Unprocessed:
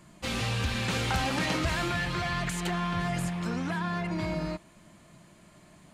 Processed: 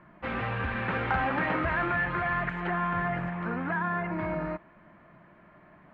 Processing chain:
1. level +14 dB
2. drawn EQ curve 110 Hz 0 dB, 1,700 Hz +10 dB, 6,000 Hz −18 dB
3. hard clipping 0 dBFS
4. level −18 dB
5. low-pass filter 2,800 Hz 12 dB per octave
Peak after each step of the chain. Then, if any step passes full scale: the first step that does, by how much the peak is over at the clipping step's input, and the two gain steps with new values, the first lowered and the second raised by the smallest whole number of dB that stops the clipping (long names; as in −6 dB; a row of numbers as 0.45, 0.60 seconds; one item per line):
−4.0, +4.5, 0.0, −18.0, −17.5 dBFS
step 2, 4.5 dB
step 1 +9 dB, step 4 −13 dB